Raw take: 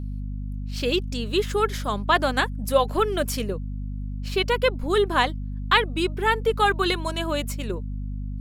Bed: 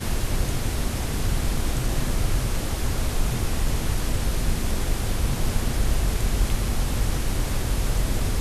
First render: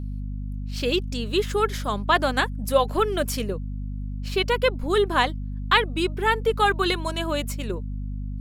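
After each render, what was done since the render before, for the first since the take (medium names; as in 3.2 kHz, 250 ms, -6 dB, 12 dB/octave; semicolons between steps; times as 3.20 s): no audible change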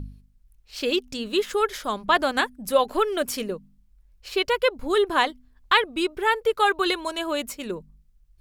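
de-hum 50 Hz, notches 5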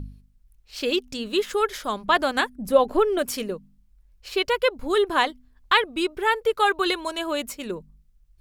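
2.55–3.19 s: tilt shelf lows +6 dB, about 940 Hz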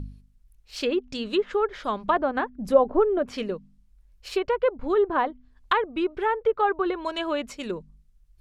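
low-pass that closes with the level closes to 1.1 kHz, closed at -19 dBFS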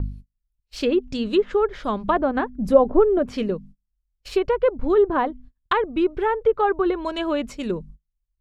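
gate -48 dBFS, range -30 dB; bass shelf 360 Hz +10.5 dB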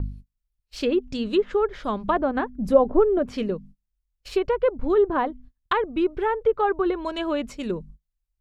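trim -2 dB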